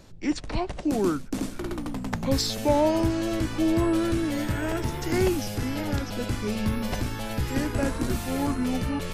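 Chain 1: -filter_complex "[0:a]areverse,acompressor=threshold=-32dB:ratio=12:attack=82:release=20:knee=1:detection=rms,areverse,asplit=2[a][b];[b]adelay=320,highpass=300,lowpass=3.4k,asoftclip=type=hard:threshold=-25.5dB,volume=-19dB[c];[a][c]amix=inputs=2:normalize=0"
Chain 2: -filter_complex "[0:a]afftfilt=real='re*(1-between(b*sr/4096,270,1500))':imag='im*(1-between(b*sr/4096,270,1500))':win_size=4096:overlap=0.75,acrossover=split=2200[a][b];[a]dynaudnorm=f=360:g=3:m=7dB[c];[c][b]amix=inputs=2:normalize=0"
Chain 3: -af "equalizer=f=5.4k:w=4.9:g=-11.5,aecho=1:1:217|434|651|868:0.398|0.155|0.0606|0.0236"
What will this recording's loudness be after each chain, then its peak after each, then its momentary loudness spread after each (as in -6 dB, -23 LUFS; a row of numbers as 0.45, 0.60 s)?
-30.5, -25.0, -26.5 LUFS; -17.0, -7.5, -10.0 dBFS; 4, 7, 8 LU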